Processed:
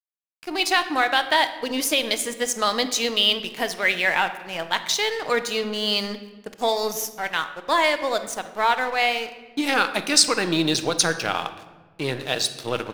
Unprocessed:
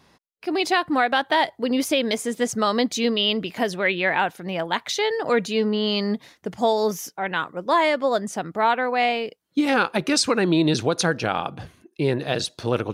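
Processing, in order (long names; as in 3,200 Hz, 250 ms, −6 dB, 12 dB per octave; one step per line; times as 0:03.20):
spectral tilt +2.5 dB per octave
dead-zone distortion −36.5 dBFS
on a send: convolution reverb RT60 1.3 s, pre-delay 6 ms, DRR 9 dB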